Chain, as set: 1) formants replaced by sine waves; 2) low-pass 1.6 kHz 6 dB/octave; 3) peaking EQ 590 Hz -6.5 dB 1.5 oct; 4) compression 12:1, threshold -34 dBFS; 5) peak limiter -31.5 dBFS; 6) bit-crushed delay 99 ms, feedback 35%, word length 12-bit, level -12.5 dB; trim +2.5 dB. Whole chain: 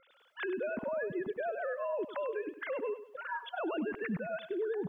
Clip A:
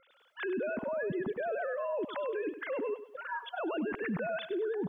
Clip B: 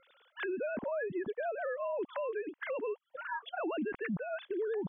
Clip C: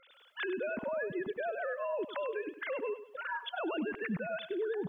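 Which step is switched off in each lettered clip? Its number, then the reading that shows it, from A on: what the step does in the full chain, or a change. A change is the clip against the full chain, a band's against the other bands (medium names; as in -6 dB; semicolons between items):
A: 4, mean gain reduction 10.0 dB; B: 6, crest factor change -2.0 dB; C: 2, 2 kHz band +2.0 dB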